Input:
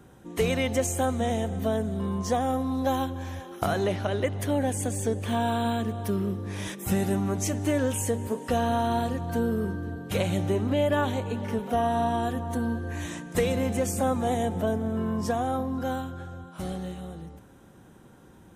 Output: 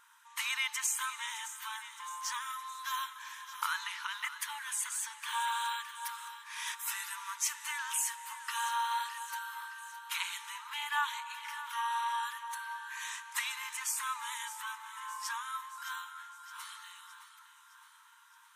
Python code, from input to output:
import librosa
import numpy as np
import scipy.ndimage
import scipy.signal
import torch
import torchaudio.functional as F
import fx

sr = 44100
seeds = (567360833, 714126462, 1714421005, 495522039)

y = fx.brickwall_highpass(x, sr, low_hz=870.0)
y = fx.echo_feedback(y, sr, ms=615, feedback_pct=56, wet_db=-13)